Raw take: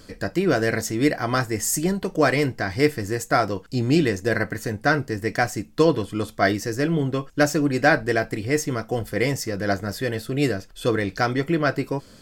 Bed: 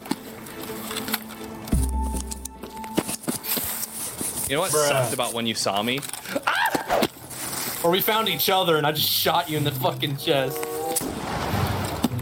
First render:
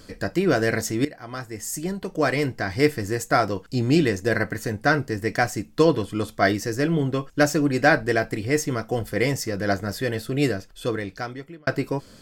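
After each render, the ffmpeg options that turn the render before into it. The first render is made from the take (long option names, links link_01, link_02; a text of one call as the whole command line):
ffmpeg -i in.wav -filter_complex "[0:a]asplit=3[link_01][link_02][link_03];[link_01]atrim=end=1.05,asetpts=PTS-STARTPTS,afade=type=out:start_time=1.046:duration=0.004:curve=hsin:silence=0.125893[link_04];[link_02]atrim=start=1.05:end=11.67,asetpts=PTS-STARTPTS,afade=type=in:duration=1.81:silence=0.125893,afade=type=out:start_time=9.38:duration=1.24[link_05];[link_03]atrim=start=11.67,asetpts=PTS-STARTPTS,afade=type=in:duration=0.004:curve=hsin[link_06];[link_04][link_05][link_06]concat=n=3:v=0:a=1" out.wav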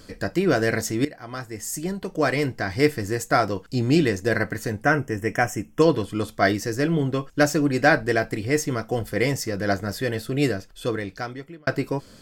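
ffmpeg -i in.wav -filter_complex "[0:a]asettb=1/sr,asplit=3[link_01][link_02][link_03];[link_01]atrim=end=4.834[link_04];[link_02]atrim=start=4.83:end=5.82,asetpts=PTS-STARTPTS,afade=type=in:duration=0.004:curve=qsin,afade=type=out:start_time=0.986:duration=0.004:curve=qsin,asuperstop=centerf=4200:order=8:qfactor=2.1[link_05];[link_03]atrim=start=5.816[link_06];[link_04][link_05]acrossfade=duration=0.004:curve1=hsin:curve2=qsin[link_07];[link_07][link_06]acrossfade=duration=0.004:curve1=qsin:curve2=hsin" out.wav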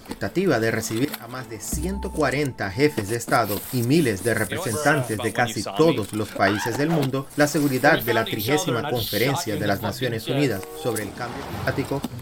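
ffmpeg -i in.wav -i bed.wav -filter_complex "[1:a]volume=-7dB[link_01];[0:a][link_01]amix=inputs=2:normalize=0" out.wav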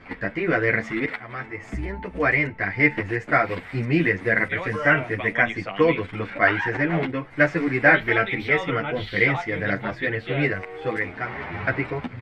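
ffmpeg -i in.wav -filter_complex "[0:a]lowpass=frequency=2100:width_type=q:width=4.6,asplit=2[link_01][link_02];[link_02]adelay=9.5,afreqshift=2[link_03];[link_01][link_03]amix=inputs=2:normalize=1" out.wav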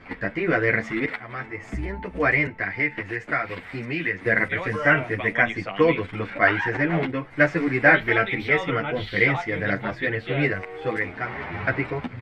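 ffmpeg -i in.wav -filter_complex "[0:a]asettb=1/sr,asplit=3[link_01][link_02][link_03];[link_01]atrim=end=2.474[link_04];[link_02]atrim=start=2.47:end=4.26,asetpts=PTS-STARTPTS,afade=type=in:duration=0.004:curve=qsin,afade=type=out:start_time=1.786:duration=0.004:curve=qsin,acrossover=split=190|1300|4300[link_05][link_06][link_07][link_08];[link_05]acompressor=threshold=-42dB:ratio=3[link_09];[link_06]acompressor=threshold=-32dB:ratio=3[link_10];[link_07]acompressor=threshold=-23dB:ratio=3[link_11];[link_08]acompressor=threshold=-58dB:ratio=3[link_12];[link_09][link_10][link_11][link_12]amix=inputs=4:normalize=0[link_13];[link_03]atrim=start=4.256[link_14];[link_04][link_13]acrossfade=duration=0.004:curve1=hsin:curve2=qsin[link_15];[link_15][link_14]acrossfade=duration=0.004:curve1=qsin:curve2=hsin" out.wav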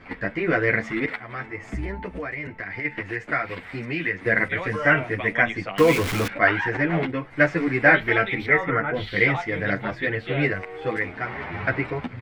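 ffmpeg -i in.wav -filter_complex "[0:a]asplit=3[link_01][link_02][link_03];[link_01]afade=type=out:start_time=2.13:duration=0.02[link_04];[link_02]acompressor=threshold=-27dB:ratio=16:attack=3.2:release=140:knee=1:detection=peak,afade=type=in:start_time=2.13:duration=0.02,afade=type=out:start_time=2.84:duration=0.02[link_05];[link_03]afade=type=in:start_time=2.84:duration=0.02[link_06];[link_04][link_05][link_06]amix=inputs=3:normalize=0,asettb=1/sr,asplit=3[link_07][link_08][link_09];[link_07]atrim=end=5.784[link_10];[link_08]atrim=start=5.78:end=6.28,asetpts=PTS-STARTPTS,afade=type=in:duration=0.004:curve=qsin,afade=type=out:start_time=0.496:duration=0.004:curve=qsin,aeval=exprs='val(0)+0.5*0.075*sgn(val(0))':channel_layout=same[link_11];[link_09]atrim=start=6.276[link_12];[link_10][link_11]acrossfade=duration=0.004:curve1=hsin:curve2=qsin[link_13];[link_13][link_12]acrossfade=duration=0.004:curve1=qsin:curve2=hsin,asettb=1/sr,asplit=3[link_14][link_15][link_16];[link_14]atrim=end=8.464[link_17];[link_15]atrim=start=8.46:end=8.94,asetpts=PTS-STARTPTS,afade=type=in:duration=0.004:curve=qsin,afade=type=out:start_time=0.476:duration=0.004:curve=qsin,highshelf=frequency=2300:width_type=q:width=3:gain=-8[link_18];[link_16]atrim=start=8.936[link_19];[link_17][link_18]acrossfade=duration=0.004:curve1=hsin:curve2=qsin[link_20];[link_20][link_19]acrossfade=duration=0.004:curve1=qsin:curve2=hsin" out.wav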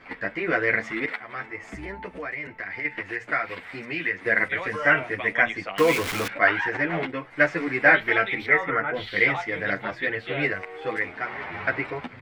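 ffmpeg -i in.wav -af "lowshelf=frequency=270:gain=-11,bandreject=frequency=60:width_type=h:width=6,bandreject=frequency=120:width_type=h:width=6" out.wav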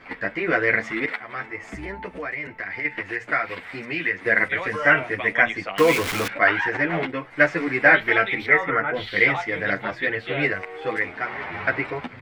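ffmpeg -i in.wav -af "volume=2.5dB,alimiter=limit=-3dB:level=0:latency=1" out.wav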